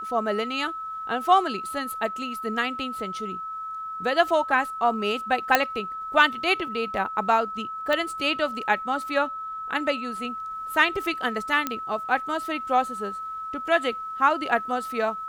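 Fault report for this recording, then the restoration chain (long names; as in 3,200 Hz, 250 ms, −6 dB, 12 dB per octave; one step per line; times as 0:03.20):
whistle 1,300 Hz −31 dBFS
0:05.55: click −3 dBFS
0:07.93: click −13 dBFS
0:11.67: click −10 dBFS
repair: click removal
notch filter 1,300 Hz, Q 30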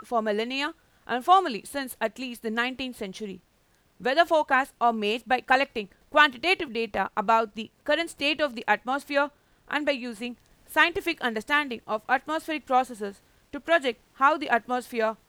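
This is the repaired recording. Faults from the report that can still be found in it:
none of them is left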